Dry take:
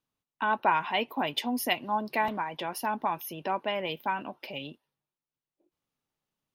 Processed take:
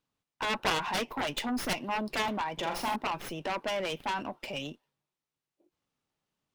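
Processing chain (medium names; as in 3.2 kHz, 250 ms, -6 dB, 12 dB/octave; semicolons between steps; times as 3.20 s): Chebyshev shaper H 3 -14 dB, 7 -8 dB, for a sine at -11.5 dBFS; 2.53–2.96 s: flutter echo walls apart 7.3 m, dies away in 0.46 s; sliding maximum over 3 samples; trim -5 dB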